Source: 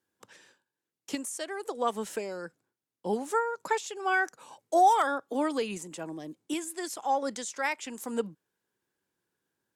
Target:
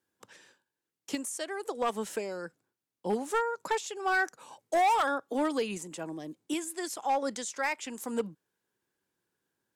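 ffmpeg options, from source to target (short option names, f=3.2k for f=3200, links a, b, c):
-af "asoftclip=type=hard:threshold=-22dB"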